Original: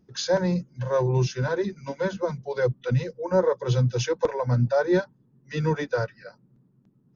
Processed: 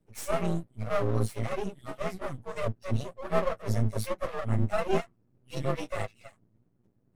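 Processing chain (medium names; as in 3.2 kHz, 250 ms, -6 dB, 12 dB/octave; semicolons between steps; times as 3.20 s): frequency axis rescaled in octaves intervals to 118%; half-wave rectifier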